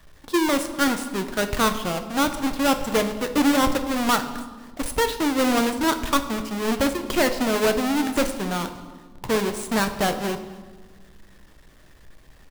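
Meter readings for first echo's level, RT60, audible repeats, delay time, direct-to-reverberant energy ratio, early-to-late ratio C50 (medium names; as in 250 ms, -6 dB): -23.0 dB, 1.5 s, 2, 247 ms, 7.0 dB, 10.5 dB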